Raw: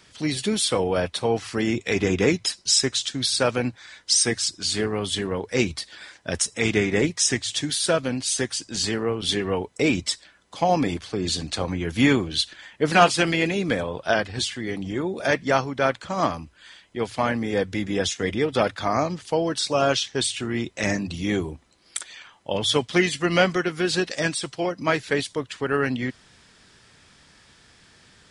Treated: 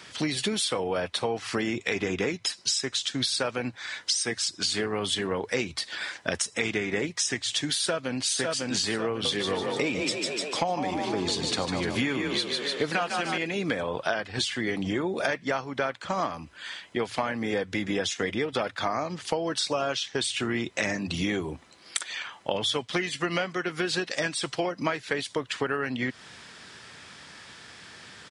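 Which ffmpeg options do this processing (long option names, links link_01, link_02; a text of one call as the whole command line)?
ffmpeg -i in.wav -filter_complex "[0:a]asplit=2[link_01][link_02];[link_02]afade=type=in:start_time=7.75:duration=0.01,afade=type=out:start_time=8.26:duration=0.01,aecho=0:1:550|1100|1650|2200:0.530884|0.18581|0.0650333|0.0227617[link_03];[link_01][link_03]amix=inputs=2:normalize=0,asettb=1/sr,asplit=3[link_04][link_05][link_06];[link_04]atrim=end=9.104[link_07];[link_05]atrim=start=9.1:end=13.38,asetpts=PTS-STARTPTS,afade=type=in:duration=0.004:curve=qsin,afade=type=out:start_time=4.276:duration=0.004:curve=qsin,asplit=8[link_08][link_09][link_10][link_11][link_12][link_13][link_14][link_15];[link_09]adelay=149,afreqshift=33,volume=-6dB[link_16];[link_10]adelay=298,afreqshift=66,volume=-11.5dB[link_17];[link_11]adelay=447,afreqshift=99,volume=-17dB[link_18];[link_12]adelay=596,afreqshift=132,volume=-22.5dB[link_19];[link_13]adelay=745,afreqshift=165,volume=-28.1dB[link_20];[link_14]adelay=894,afreqshift=198,volume=-33.6dB[link_21];[link_15]adelay=1043,afreqshift=231,volume=-39.1dB[link_22];[link_08][link_16][link_17][link_18][link_19][link_20][link_21][link_22]amix=inputs=8:normalize=0,atrim=end_sample=188748[link_23];[link_06]atrim=start=13.376[link_24];[link_07][link_23]acrossfade=duration=0.004:curve1=hsin:curve2=qsin[link_25];[link_25][link_24]acrossfade=duration=0.004:curve1=qsin:curve2=hsin,highpass=93,equalizer=frequency=1600:width=0.31:gain=5.5,acompressor=threshold=-28dB:ratio=12,volume=3.5dB" out.wav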